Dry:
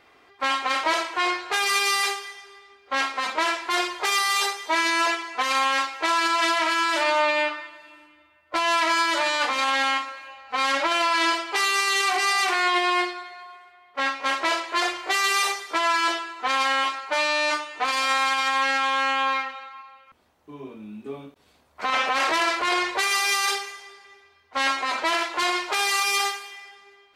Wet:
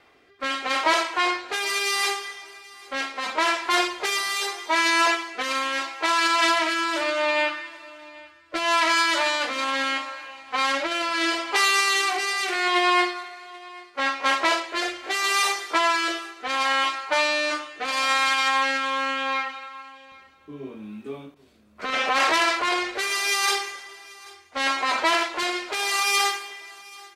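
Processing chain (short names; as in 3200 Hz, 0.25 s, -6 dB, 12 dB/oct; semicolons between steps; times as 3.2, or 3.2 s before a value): rotary speaker horn 0.75 Hz; on a send: feedback echo 0.785 s, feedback 22%, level -22 dB; on the sum: gain +3 dB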